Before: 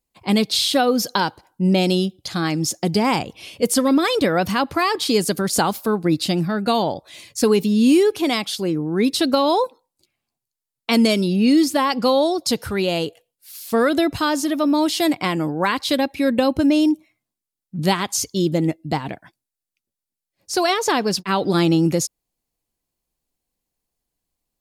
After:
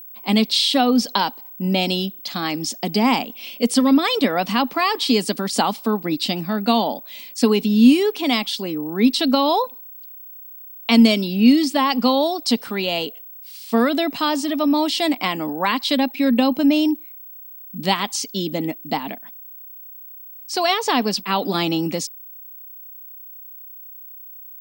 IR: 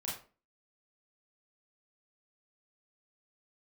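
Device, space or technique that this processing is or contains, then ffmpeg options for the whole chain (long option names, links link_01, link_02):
old television with a line whistle: -af "highpass=frequency=220:width=0.5412,highpass=frequency=220:width=1.3066,equalizer=frequency=240:width_type=q:width=4:gain=7,equalizer=frequency=350:width_type=q:width=4:gain=-9,equalizer=frequency=520:width_type=q:width=4:gain=-5,equalizer=frequency=1500:width_type=q:width=4:gain=-6,equalizer=frequency=3000:width_type=q:width=4:gain=3,equalizer=frequency=6700:width_type=q:width=4:gain=-7,lowpass=frequency=8200:width=0.5412,lowpass=frequency=8200:width=1.3066,aeval=exprs='val(0)+0.0126*sin(2*PI*15734*n/s)':channel_layout=same,volume=1.5dB"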